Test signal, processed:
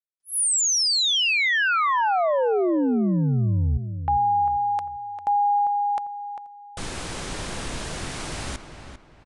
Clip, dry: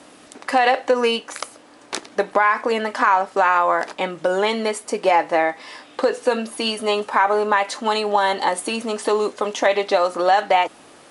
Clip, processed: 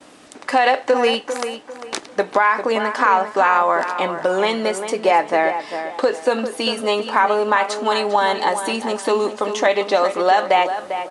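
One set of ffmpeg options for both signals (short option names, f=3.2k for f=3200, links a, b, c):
-filter_complex "[0:a]agate=range=-33dB:threshold=-46dB:ratio=3:detection=peak,asplit=2[a][b];[b]adelay=398,lowpass=f=2.9k:p=1,volume=-9dB,asplit=2[c][d];[d]adelay=398,lowpass=f=2.9k:p=1,volume=0.33,asplit=2[e][f];[f]adelay=398,lowpass=f=2.9k:p=1,volume=0.33,asplit=2[g][h];[h]adelay=398,lowpass=f=2.9k:p=1,volume=0.33[i];[a][c][e][g][i]amix=inputs=5:normalize=0,aresample=22050,aresample=44100,volume=1dB"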